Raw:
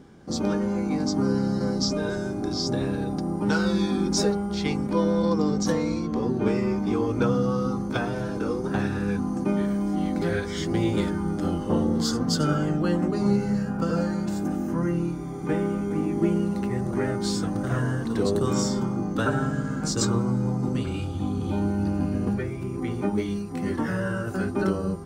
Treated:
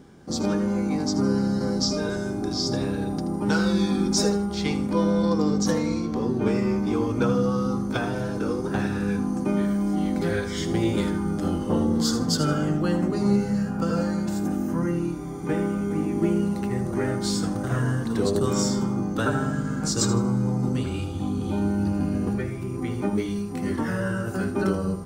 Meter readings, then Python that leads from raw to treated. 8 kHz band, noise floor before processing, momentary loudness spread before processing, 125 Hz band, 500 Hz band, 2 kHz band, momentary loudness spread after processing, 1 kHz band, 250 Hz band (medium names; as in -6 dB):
+3.0 dB, -31 dBFS, 5 LU, +0.5 dB, +0.5 dB, +0.5 dB, 5 LU, 0.0 dB, +1.0 dB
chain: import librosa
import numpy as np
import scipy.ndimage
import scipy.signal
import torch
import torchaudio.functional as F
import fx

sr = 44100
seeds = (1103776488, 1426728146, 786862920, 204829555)

p1 = fx.high_shelf(x, sr, hz=7000.0, db=5.5)
y = p1 + fx.echo_feedback(p1, sr, ms=79, feedback_pct=30, wet_db=-12, dry=0)